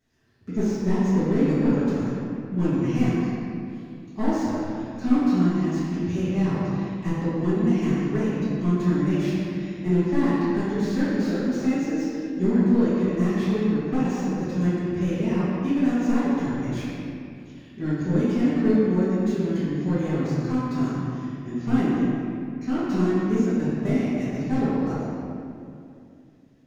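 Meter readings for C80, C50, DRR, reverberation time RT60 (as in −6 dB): −2.0 dB, −4.0 dB, −14.5 dB, 2.5 s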